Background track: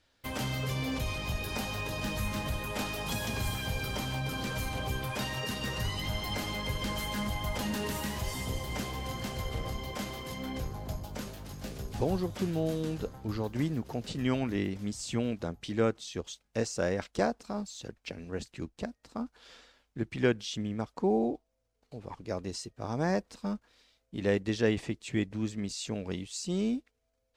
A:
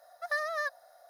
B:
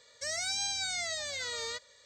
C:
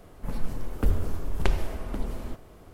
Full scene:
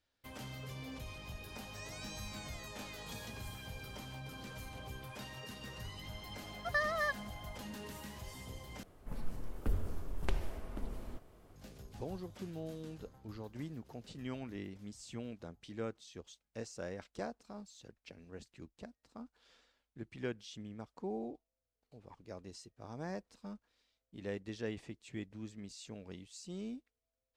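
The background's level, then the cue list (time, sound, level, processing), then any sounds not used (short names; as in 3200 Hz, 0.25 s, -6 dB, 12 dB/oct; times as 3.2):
background track -13 dB
1.53 add B -17.5 dB
6.43 add A -1.5 dB + bell 12000 Hz -10.5 dB
8.83 replace with C -10.5 dB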